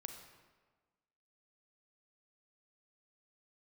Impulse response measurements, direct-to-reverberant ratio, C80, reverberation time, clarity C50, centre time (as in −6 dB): 4.5 dB, 7.5 dB, 1.4 s, 6.0 dB, 32 ms